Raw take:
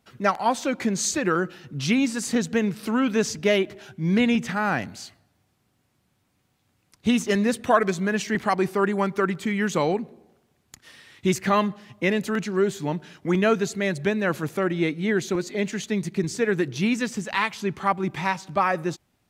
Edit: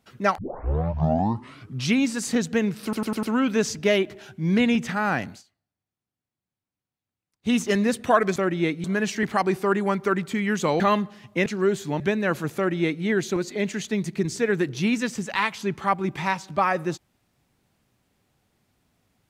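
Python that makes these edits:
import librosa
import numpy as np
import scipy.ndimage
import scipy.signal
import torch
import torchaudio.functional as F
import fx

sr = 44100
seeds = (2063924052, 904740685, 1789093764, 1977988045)

y = fx.edit(x, sr, fx.tape_start(start_s=0.38, length_s=1.51),
    fx.stutter(start_s=2.83, slice_s=0.1, count=5),
    fx.fade_down_up(start_s=4.91, length_s=2.22, db=-21.5, fade_s=0.12),
    fx.cut(start_s=9.92, length_s=1.54),
    fx.cut(start_s=12.12, length_s=0.29),
    fx.cut(start_s=12.95, length_s=1.04),
    fx.duplicate(start_s=14.55, length_s=0.48, to_s=7.96), tone=tone)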